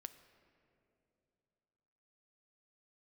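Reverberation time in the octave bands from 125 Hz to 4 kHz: 3.3 s, 3.1 s, 3.1 s, 2.8 s, 2.3 s, 1.9 s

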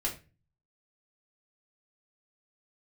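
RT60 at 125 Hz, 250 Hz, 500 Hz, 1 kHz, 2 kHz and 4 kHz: 0.70 s, 0.50 s, 0.35 s, 0.25 s, 0.30 s, 0.25 s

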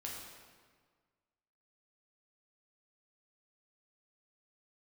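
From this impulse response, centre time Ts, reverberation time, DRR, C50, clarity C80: 79 ms, 1.6 s, -3.5 dB, 1.0 dB, 2.5 dB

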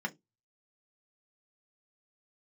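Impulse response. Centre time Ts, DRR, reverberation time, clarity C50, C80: 5 ms, 2.0 dB, 0.15 s, 24.5 dB, 33.0 dB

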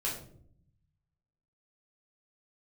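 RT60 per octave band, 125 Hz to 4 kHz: 1.6 s, 1.1 s, 0.70 s, 0.45 s, 0.40 s, 0.35 s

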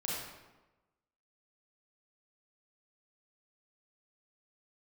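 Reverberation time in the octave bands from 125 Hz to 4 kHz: 1.1 s, 1.1 s, 1.1 s, 1.1 s, 0.90 s, 0.75 s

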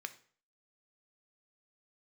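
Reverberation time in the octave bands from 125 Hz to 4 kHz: 0.50 s, 0.45 s, 0.50 s, 0.45 s, 0.45 s, 0.40 s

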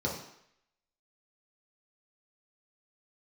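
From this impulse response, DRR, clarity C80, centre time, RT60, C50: -4.0 dB, 8.5 dB, 35 ms, 0.70 s, 5.0 dB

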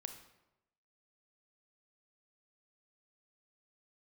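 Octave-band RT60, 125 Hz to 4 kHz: 1.0 s, 0.90 s, 0.95 s, 0.90 s, 0.75 s, 0.65 s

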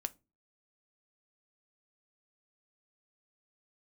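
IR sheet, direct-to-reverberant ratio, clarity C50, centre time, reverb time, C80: 11.0 dB, 24.5 dB, 2 ms, 0.30 s, 33.0 dB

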